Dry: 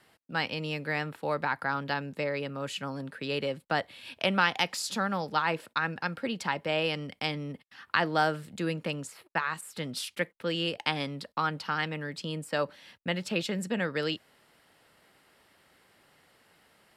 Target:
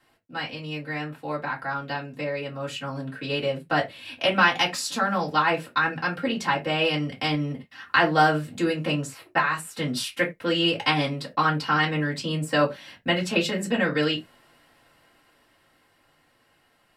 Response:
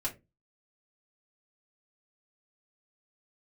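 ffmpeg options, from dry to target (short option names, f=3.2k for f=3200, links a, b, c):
-filter_complex "[1:a]atrim=start_sample=2205,afade=t=out:st=0.15:d=0.01,atrim=end_sample=7056[a];[0:a][a]afir=irnorm=-1:irlink=0,dynaudnorm=f=270:g=21:m=11.5dB,volume=-4dB"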